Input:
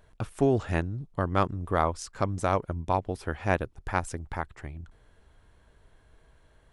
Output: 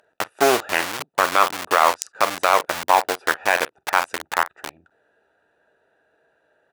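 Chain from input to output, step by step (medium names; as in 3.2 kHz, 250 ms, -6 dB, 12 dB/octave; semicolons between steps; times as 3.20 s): local Wiener filter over 41 samples; on a send: early reflections 13 ms -17 dB, 46 ms -17.5 dB; on the sum: Chebyshev shaper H 5 -23 dB, 8 -30 dB, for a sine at -8.5 dBFS; in parallel at -4.5 dB: bit crusher 5-bit; on the sum: high-pass 990 Hz 12 dB/octave; loudness maximiser +16.5 dB; trim -1 dB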